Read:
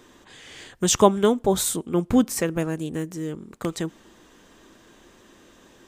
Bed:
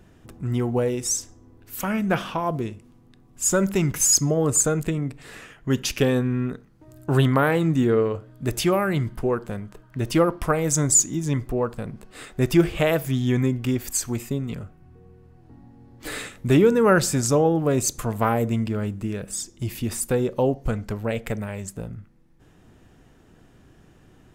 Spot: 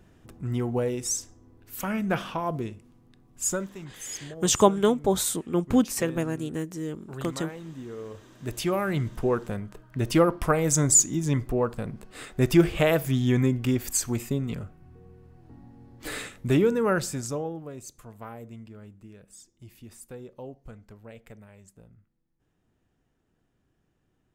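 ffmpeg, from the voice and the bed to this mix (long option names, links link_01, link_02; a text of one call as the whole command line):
ffmpeg -i stem1.wav -i stem2.wav -filter_complex "[0:a]adelay=3600,volume=-2.5dB[link_01];[1:a]volume=14.5dB,afade=type=out:start_time=3.43:duration=0.26:silence=0.16788,afade=type=in:start_time=7.97:duration=1.39:silence=0.11885,afade=type=out:start_time=15.82:duration=1.9:silence=0.11885[link_02];[link_01][link_02]amix=inputs=2:normalize=0" out.wav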